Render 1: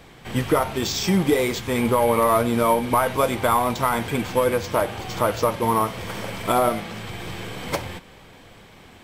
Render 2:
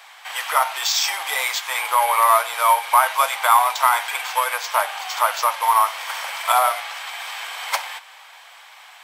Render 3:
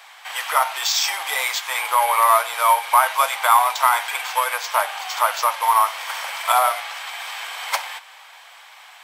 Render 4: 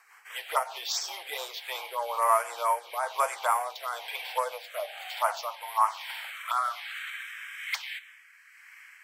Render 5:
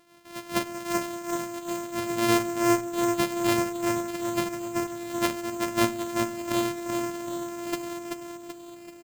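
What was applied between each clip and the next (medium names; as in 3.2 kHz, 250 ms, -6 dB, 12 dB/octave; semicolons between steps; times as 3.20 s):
steep high-pass 760 Hz 36 dB/octave; trim +6.5 dB
no audible change
rotary cabinet horn 5 Hz, later 1.1 Hz, at 1.06 s; touch-sensitive phaser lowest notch 580 Hz, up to 3.8 kHz, full sweep at -17 dBFS; high-pass sweep 400 Hz -> 1.9 kHz, 3.94–7.67 s; trim -6.5 dB
sorted samples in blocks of 128 samples; feedback delay 383 ms, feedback 48%, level -4.5 dB; reverberation RT60 0.65 s, pre-delay 7 ms, DRR 16 dB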